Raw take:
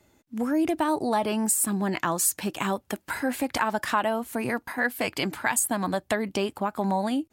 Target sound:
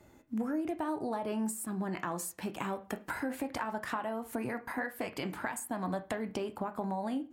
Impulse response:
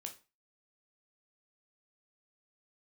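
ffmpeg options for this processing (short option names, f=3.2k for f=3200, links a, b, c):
-filter_complex "[0:a]acompressor=threshold=-37dB:ratio=5,asplit=2[a][b];[1:a]atrim=start_sample=2205,asetrate=37044,aresample=44100,lowpass=2.2k[c];[b][c]afir=irnorm=-1:irlink=0,volume=3.5dB[d];[a][d]amix=inputs=2:normalize=0,volume=-2dB"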